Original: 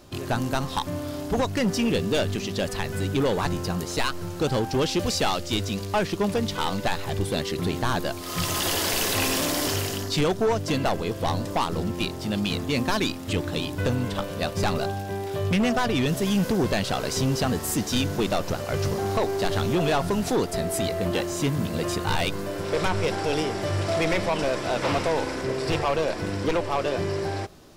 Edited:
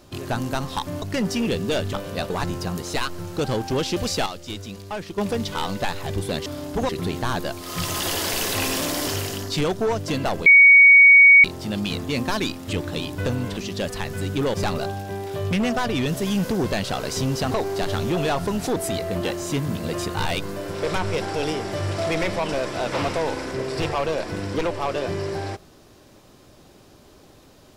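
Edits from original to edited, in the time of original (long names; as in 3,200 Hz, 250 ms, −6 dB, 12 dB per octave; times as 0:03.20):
0:01.02–0:01.45: move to 0:07.49
0:02.36–0:03.33: swap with 0:14.17–0:14.54
0:05.29–0:06.21: clip gain −7 dB
0:11.06–0:12.04: beep over 2,240 Hz −7 dBFS
0:17.51–0:19.14: remove
0:20.39–0:20.66: remove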